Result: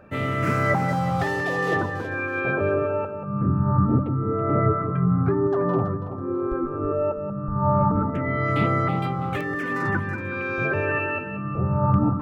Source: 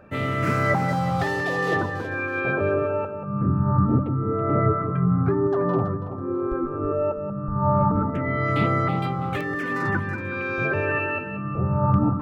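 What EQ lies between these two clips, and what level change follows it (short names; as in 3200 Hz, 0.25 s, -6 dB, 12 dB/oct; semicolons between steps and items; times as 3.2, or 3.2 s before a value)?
dynamic EQ 4200 Hz, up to -3 dB, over -47 dBFS, Q 2.2; 0.0 dB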